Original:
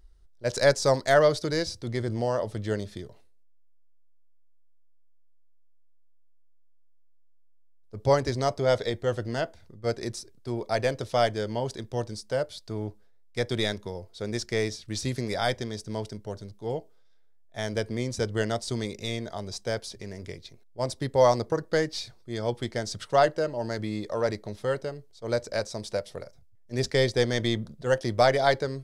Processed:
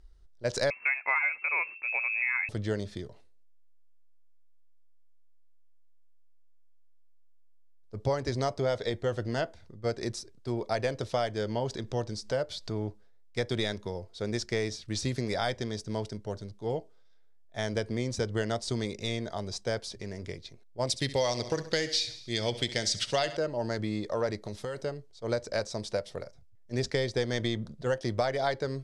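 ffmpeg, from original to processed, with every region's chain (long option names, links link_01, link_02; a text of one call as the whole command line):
ffmpeg -i in.wav -filter_complex "[0:a]asettb=1/sr,asplit=3[link_01][link_02][link_03];[link_01]atrim=end=0.704[link_04];[link_02]atrim=start=0.7:end=2.49,asetpts=PTS-STARTPTS,afade=type=in:duration=0.004:curve=qsin,afade=type=out:start_time=1.786:duration=0.004:curve=qsin,adynamicequalizer=threshold=0.0158:dfrequency=1600:dqfactor=1:tfrequency=1600:tqfactor=1:attack=5:release=100:ratio=0.375:range=2:mode=boostabove:tftype=bell,lowpass=frequency=2300:width_type=q:width=0.5098,lowpass=frequency=2300:width_type=q:width=0.6013,lowpass=frequency=2300:width_type=q:width=0.9,lowpass=frequency=2300:width_type=q:width=2.563,afreqshift=-2700[link_05];[link_03]atrim=start=2.486[link_06];[link_04][link_05]acrossfade=duration=0.004:curve1=hsin:curve2=qsin[link_07];[link_07][link_06]acrossfade=duration=0.004:curve1=qsin:curve2=hsin,asettb=1/sr,asplit=3[link_08][link_09][link_10];[link_08]atrim=end=11.414[link_11];[link_09]atrim=start=11.41:end=12.88,asetpts=PTS-STARTPTS,afade=type=in:duration=0.004:curve=qsin,afade=type=out:start_time=1.466:duration=0.004:curve=qsin,equalizer=frequency=9800:width_type=o:width=0.38:gain=-6,acompressor=mode=upward:threshold=-31dB:ratio=2.5:attack=3.2:release=140:knee=2.83:detection=peak[link_12];[link_10]atrim=start=12.876[link_13];[link_11][link_12]acrossfade=duration=0.004:curve1=hsin:curve2=qsin[link_14];[link_14][link_13]acrossfade=duration=0.004:curve1=qsin:curve2=hsin,asettb=1/sr,asplit=3[link_15][link_16][link_17];[link_15]atrim=end=20.874[link_18];[link_16]atrim=start=20.87:end=23.37,asetpts=PTS-STARTPTS,afade=type=in:duration=0.004:curve=qsin,afade=type=out:start_time=2.496:duration=0.004:curve=qsin,highshelf=frequency=1800:width_type=q:width=1.5:gain=10,aecho=1:1:66|132|198|264|330:0.168|0.0907|0.049|0.0264|0.0143,atrim=end_sample=110250[link_19];[link_17]atrim=start=23.366[link_20];[link_18][link_19]acrossfade=duration=0.004:curve1=hsin:curve2=qsin[link_21];[link_21][link_20]acrossfade=duration=0.004:curve1=qsin:curve2=hsin,asettb=1/sr,asplit=3[link_22][link_23][link_24];[link_22]atrim=end=24.424[link_25];[link_23]atrim=start=24.42:end=24.84,asetpts=PTS-STARTPTS,afade=type=in:duration=0.004:curve=qsin,afade=type=out:start_time=0.416:duration=0.004:curve=qsin,highshelf=frequency=5200:gain=10,acompressor=threshold=-31dB:ratio=12:attack=3.2:release=140:knee=1:detection=peak[link_26];[link_24]atrim=start=24.836[link_27];[link_25][link_26]acrossfade=duration=0.004:curve1=hsin:curve2=qsin[link_28];[link_28][link_27]acrossfade=duration=0.004:curve1=qsin:curve2=hsin,lowpass=8300,acompressor=threshold=-25dB:ratio=6" out.wav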